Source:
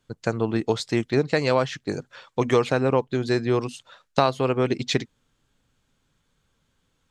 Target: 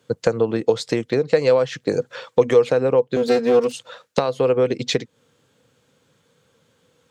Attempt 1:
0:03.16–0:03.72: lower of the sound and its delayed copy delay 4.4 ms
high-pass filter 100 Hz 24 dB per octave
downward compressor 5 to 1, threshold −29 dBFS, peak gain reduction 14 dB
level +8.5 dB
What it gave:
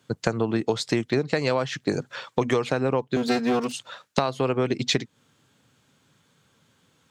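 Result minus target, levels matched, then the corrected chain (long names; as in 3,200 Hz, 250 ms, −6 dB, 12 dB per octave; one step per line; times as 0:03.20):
500 Hz band −3.0 dB
0:03.16–0:03.72: lower of the sound and its delayed copy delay 4.4 ms
high-pass filter 100 Hz 24 dB per octave
downward compressor 5 to 1, threshold −29 dBFS, peak gain reduction 14 dB
parametric band 490 Hz +13.5 dB 0.31 octaves
level +8.5 dB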